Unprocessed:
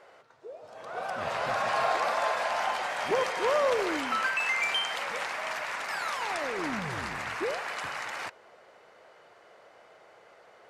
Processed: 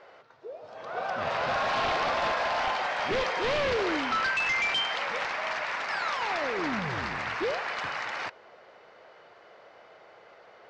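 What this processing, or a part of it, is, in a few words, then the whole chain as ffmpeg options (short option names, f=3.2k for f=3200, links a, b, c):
synthesiser wavefolder: -af "aeval=exprs='0.0596*(abs(mod(val(0)/0.0596+3,4)-2)-1)':c=same,lowpass=f=5.5k:w=0.5412,lowpass=f=5.5k:w=1.3066,volume=2.5dB"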